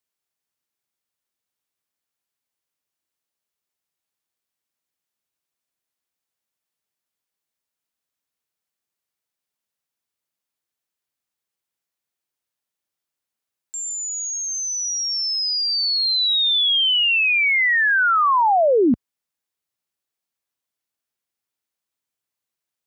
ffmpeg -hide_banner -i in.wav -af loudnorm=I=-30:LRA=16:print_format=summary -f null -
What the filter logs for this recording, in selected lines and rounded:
Input Integrated:    -17.3 LUFS
Input True Peak:     -12.0 dBTP
Input LRA:            11.3 LU
Input Threshold:     -27.4 LUFS